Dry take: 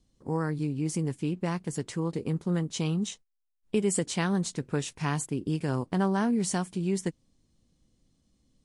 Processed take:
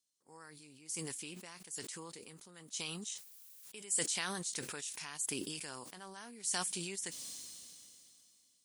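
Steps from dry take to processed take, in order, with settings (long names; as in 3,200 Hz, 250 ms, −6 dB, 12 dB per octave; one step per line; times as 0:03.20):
first difference
level that may fall only so fast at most 21 dB per second
level −3.5 dB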